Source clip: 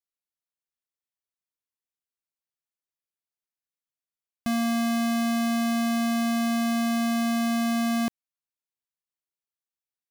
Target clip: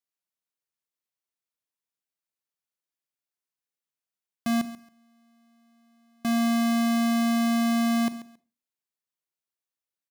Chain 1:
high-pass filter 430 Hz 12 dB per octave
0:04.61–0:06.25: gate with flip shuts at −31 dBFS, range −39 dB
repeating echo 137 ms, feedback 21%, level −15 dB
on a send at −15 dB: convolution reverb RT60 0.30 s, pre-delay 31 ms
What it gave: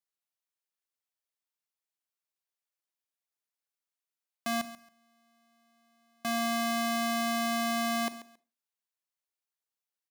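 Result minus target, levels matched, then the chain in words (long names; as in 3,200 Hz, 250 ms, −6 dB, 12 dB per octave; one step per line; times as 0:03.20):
125 Hz band −5.5 dB
high-pass filter 110 Hz 12 dB per octave
0:04.61–0:06.25: gate with flip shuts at −31 dBFS, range −39 dB
repeating echo 137 ms, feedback 21%, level −15 dB
on a send at −15 dB: convolution reverb RT60 0.30 s, pre-delay 31 ms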